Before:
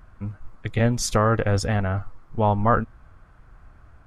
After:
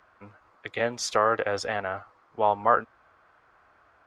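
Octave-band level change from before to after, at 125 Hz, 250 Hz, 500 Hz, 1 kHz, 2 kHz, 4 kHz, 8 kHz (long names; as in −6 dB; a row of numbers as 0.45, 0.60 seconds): −21.5, −13.5, −2.0, 0.0, 0.0, −2.0, −5.5 decibels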